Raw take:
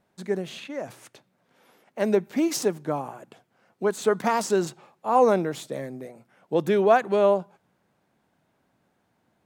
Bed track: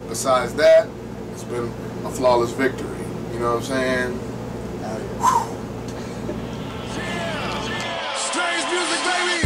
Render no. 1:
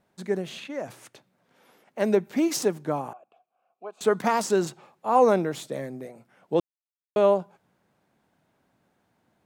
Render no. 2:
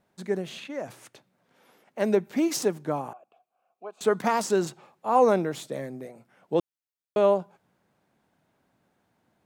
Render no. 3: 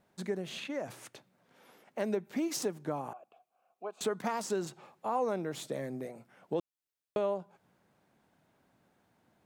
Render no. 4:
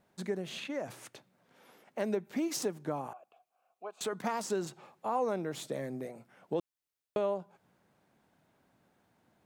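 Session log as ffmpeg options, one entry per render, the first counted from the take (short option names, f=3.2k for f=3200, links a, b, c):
-filter_complex "[0:a]asettb=1/sr,asplit=3[a][b][c];[a]atrim=end=3.134[d];[b]atrim=start=3.13:end=4.01,asetpts=PTS-STARTPTS,afade=t=in:d=0.004:c=qsin,afade=t=out:st=0.876:d=0.004:c=qsin,asplit=3[e][f][g];[e]bandpass=f=730:t=q:w=8,volume=0dB[h];[f]bandpass=f=1.09k:t=q:w=8,volume=-6dB[i];[g]bandpass=f=2.44k:t=q:w=8,volume=-9dB[j];[h][i][j]amix=inputs=3:normalize=0[k];[c]atrim=start=4.006[l];[d][k]acrossfade=d=0.004:c1=hsin:c2=qsin[m];[m][l]acrossfade=d=0.004:c1=qsin:c2=hsin,asplit=3[n][o][p];[n]atrim=end=6.6,asetpts=PTS-STARTPTS,afade=t=out:st=6.596:d=0.004:c=hsin[q];[o]atrim=start=6.6:end=7.16,asetpts=PTS-STARTPTS,volume=0[r];[p]atrim=start=7.16,asetpts=PTS-STARTPTS,afade=t=in:d=0.004:c=hsin[s];[q][r][s]concat=n=3:v=0:a=1"
-af "volume=-1dB"
-af "acompressor=threshold=-34dB:ratio=2.5"
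-filter_complex "[0:a]asettb=1/sr,asplit=3[a][b][c];[a]atrim=end=3.074[d];[b]atrim=start=3.07:end=4.13,asetpts=PTS-STARTPTS,afade=t=in:d=0.004:c=qsin,afade=t=out:st=1.056:d=0.004:c=qsin,equalizer=f=230:w=0.58:g=-6[e];[c]atrim=start=4.126[f];[d][e]acrossfade=d=0.004:c1=hsin:c2=qsin[g];[g][f]acrossfade=d=0.004:c1=qsin:c2=hsin"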